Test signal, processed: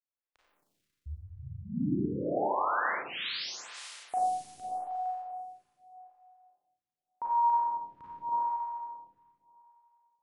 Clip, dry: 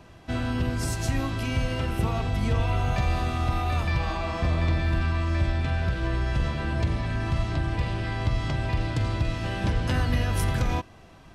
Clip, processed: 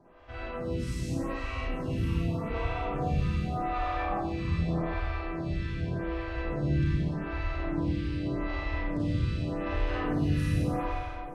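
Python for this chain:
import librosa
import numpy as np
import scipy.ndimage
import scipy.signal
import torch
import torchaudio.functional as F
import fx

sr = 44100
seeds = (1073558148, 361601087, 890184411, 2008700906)

y = fx.lowpass(x, sr, hz=1900.0, slope=6)
y = fx.room_flutter(y, sr, wall_m=9.3, rt60_s=0.45)
y = fx.rev_schroeder(y, sr, rt60_s=2.4, comb_ms=30, drr_db=-7.5)
y = fx.stagger_phaser(y, sr, hz=0.84)
y = y * librosa.db_to_amplitude(-7.5)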